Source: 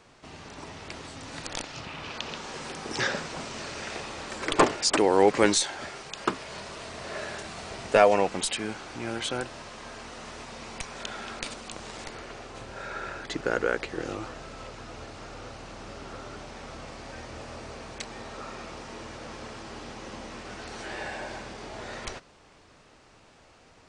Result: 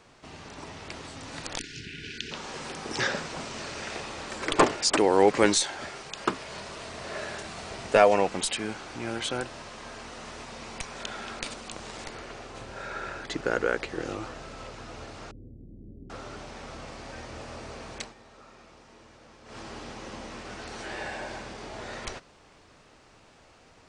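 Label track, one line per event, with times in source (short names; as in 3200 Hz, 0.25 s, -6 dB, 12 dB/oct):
1.590000	2.320000	spectral delete 470–1400 Hz
15.310000	16.100000	inverse Chebyshev low-pass stop band from 1100 Hz, stop band 60 dB
18.010000	19.580000	dip -12.5 dB, fades 0.13 s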